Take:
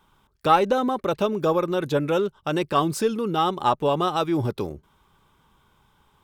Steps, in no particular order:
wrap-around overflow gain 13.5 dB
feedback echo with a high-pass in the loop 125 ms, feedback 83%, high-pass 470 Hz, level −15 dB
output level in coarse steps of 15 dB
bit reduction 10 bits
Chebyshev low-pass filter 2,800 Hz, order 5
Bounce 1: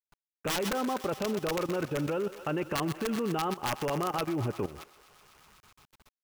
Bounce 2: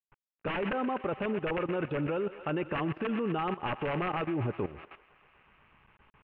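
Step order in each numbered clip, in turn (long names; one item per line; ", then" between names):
Chebyshev low-pass filter, then wrap-around overflow, then feedback echo with a high-pass in the loop, then output level in coarse steps, then bit reduction
wrap-around overflow, then feedback echo with a high-pass in the loop, then output level in coarse steps, then bit reduction, then Chebyshev low-pass filter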